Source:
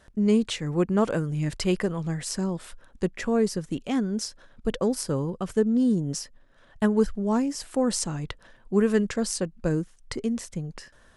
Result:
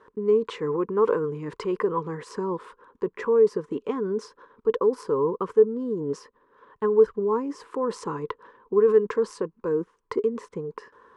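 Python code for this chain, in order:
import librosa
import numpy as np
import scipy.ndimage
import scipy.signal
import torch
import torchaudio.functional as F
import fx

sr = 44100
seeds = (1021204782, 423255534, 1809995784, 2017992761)

p1 = fx.over_compress(x, sr, threshold_db=-28.0, ratio=-0.5)
p2 = x + F.gain(torch.from_numpy(p1), 1.0).numpy()
p3 = fx.double_bandpass(p2, sr, hz=670.0, octaves=1.2)
y = F.gain(torch.from_numpy(p3), 7.0).numpy()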